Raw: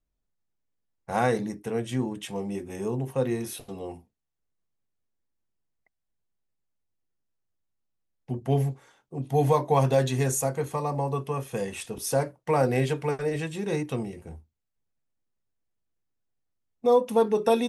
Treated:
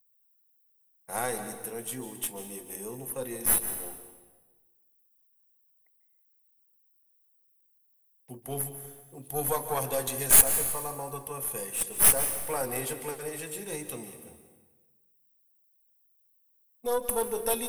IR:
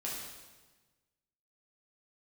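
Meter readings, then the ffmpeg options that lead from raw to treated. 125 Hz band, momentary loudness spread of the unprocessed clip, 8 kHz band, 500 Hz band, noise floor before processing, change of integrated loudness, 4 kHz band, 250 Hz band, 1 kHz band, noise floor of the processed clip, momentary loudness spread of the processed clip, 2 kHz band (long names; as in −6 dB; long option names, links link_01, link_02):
−15.0 dB, 14 LU, +12.0 dB, −8.5 dB, −81 dBFS, 0.0 dB, +0.5 dB, −11.5 dB, −6.5 dB, −68 dBFS, 19 LU, −1.5 dB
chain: -filter_complex "[0:a]aexciter=amount=3.9:drive=6.7:freq=8900,aemphasis=mode=production:type=bsi,aeval=exprs='1.78*(cos(1*acos(clip(val(0)/1.78,-1,1)))-cos(1*PI/2))+0.2*(cos(8*acos(clip(val(0)/1.78,-1,1)))-cos(8*PI/2))':channel_layout=same,asplit=2[link_01][link_02];[1:a]atrim=start_sample=2205,adelay=143[link_03];[link_02][link_03]afir=irnorm=-1:irlink=0,volume=-11dB[link_04];[link_01][link_04]amix=inputs=2:normalize=0,volume=-7.5dB"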